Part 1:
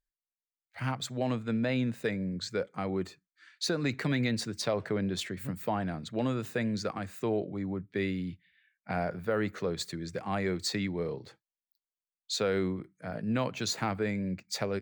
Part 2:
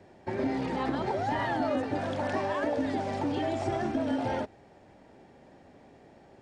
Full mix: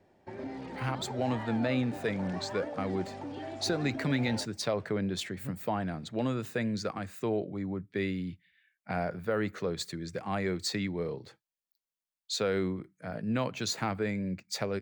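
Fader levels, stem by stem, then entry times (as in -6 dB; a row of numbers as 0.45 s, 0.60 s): -0.5 dB, -10.0 dB; 0.00 s, 0.00 s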